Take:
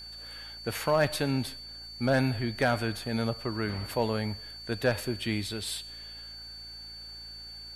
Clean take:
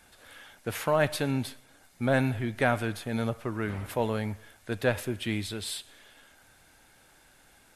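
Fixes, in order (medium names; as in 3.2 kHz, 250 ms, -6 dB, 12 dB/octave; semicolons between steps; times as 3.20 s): clip repair -15.5 dBFS; de-hum 56.1 Hz, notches 8; band-stop 4.5 kHz, Q 30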